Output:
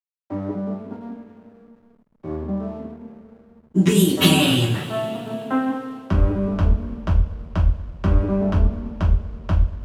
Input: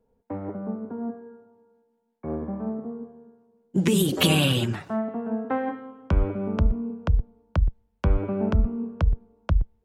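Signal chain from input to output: two-slope reverb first 0.3 s, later 3.4 s, from -21 dB, DRR -6 dB; backlash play -43 dBFS; gain -2.5 dB

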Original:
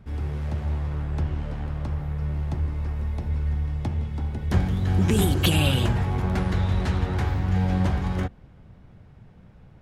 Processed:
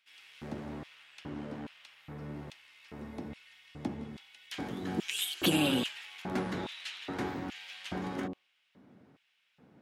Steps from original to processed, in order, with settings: de-hum 46.02 Hz, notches 27; LFO high-pass square 1.2 Hz 260–2800 Hz; gain -5.5 dB

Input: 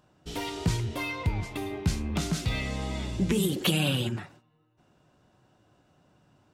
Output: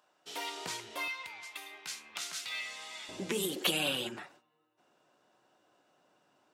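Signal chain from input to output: HPF 640 Hz 12 dB/oct, from 1.08 s 1400 Hz, from 3.09 s 400 Hz; gain -2 dB

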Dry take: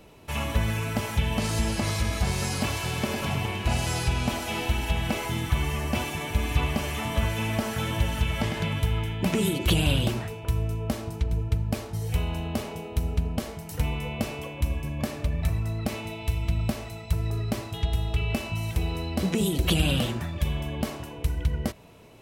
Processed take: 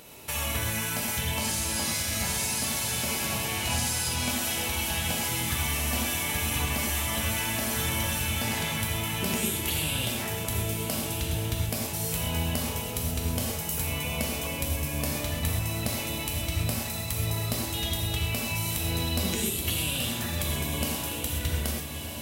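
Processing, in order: RIAA curve recording; compressor, threshold -31 dBFS, peak gain reduction 14.5 dB; on a send: diffused feedback echo 1.289 s, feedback 44%, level -7 dB; on the sum: vibrato 3.5 Hz 5.1 cents; low shelf 200 Hz +10.5 dB; non-linear reverb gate 0.15 s flat, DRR -0.5 dB

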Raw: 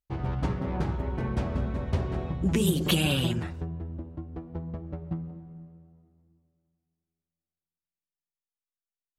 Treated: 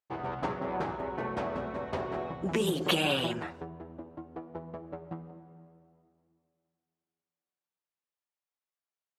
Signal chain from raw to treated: HPF 720 Hz 12 dB/oct; tilt -4 dB/oct; gain +5.5 dB

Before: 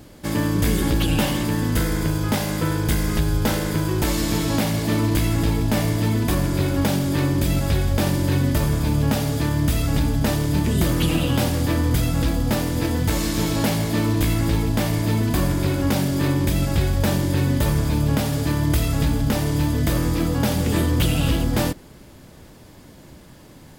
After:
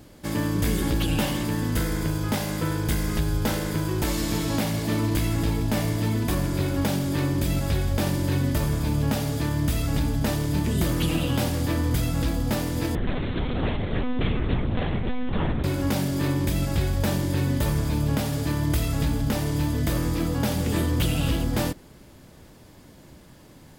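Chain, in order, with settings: 12.95–15.64 monotone LPC vocoder at 8 kHz 250 Hz; gain -4 dB

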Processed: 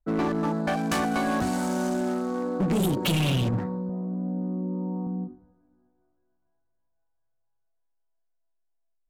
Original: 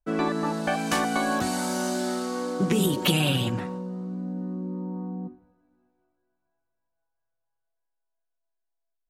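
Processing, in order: Wiener smoothing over 15 samples; low shelf 200 Hz +6.5 dB; hard clip -20.5 dBFS, distortion -11 dB; 3.89–5.07 speaker cabinet 130–2900 Hz, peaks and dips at 640 Hz +10 dB, 970 Hz +3 dB, 1400 Hz -6 dB; ending taper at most 180 dB/s

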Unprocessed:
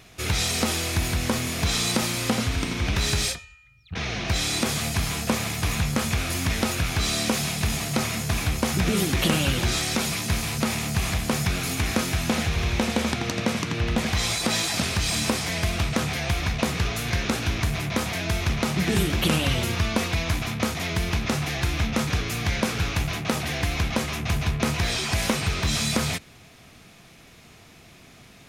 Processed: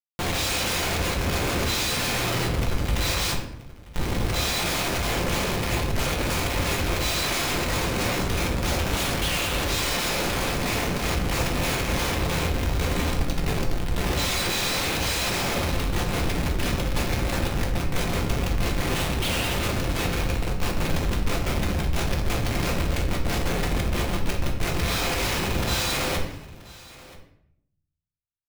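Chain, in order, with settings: 20.24–20.85 minimum comb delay 0.73 ms; inverse Chebyshev band-stop 290–820 Hz, stop band 60 dB; tilt shelf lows -8.5 dB; de-hum 272.6 Hz, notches 10; Schmitt trigger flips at -21 dBFS; upward compressor, threshold -28 dBFS; echo 0.979 s -20 dB; shoebox room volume 170 m³, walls mixed, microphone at 0.84 m; gain -3.5 dB

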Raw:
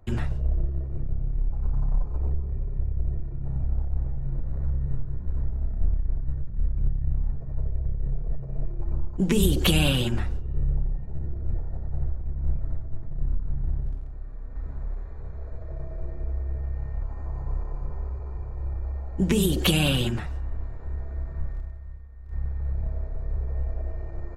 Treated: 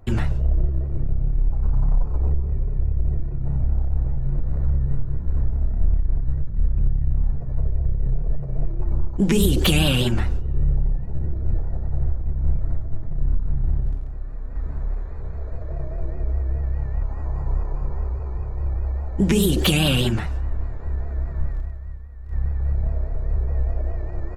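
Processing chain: in parallel at +2 dB: limiter -18 dBFS, peak gain reduction 10 dB; on the sum: vibrato 4.9 Hz 84 cents; gain -1 dB

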